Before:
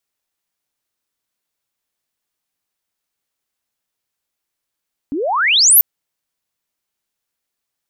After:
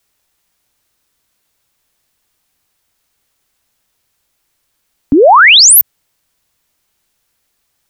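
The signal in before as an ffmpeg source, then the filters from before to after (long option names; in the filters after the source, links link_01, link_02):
-f lavfi -i "aevalsrc='pow(10,(-18.5+14*t/0.69)/20)*sin(2*PI*260*0.69/log(15000/260)*(exp(log(15000/260)*t/0.69)-1))':duration=0.69:sample_rate=44100"
-filter_complex "[0:a]acrossover=split=110|1800[link_01][link_02][link_03];[link_01]acontrast=88[link_04];[link_04][link_02][link_03]amix=inputs=3:normalize=0,alimiter=level_in=14.5dB:limit=-1dB:release=50:level=0:latency=1"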